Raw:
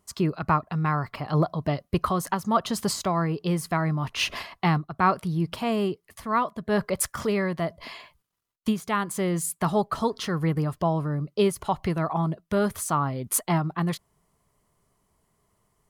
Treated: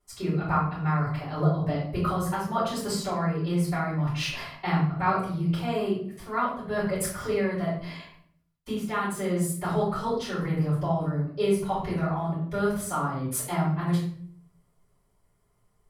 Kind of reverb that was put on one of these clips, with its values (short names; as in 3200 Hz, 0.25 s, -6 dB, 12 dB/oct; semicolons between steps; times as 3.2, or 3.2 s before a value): shoebox room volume 85 m³, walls mixed, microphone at 4.3 m; gain -17.5 dB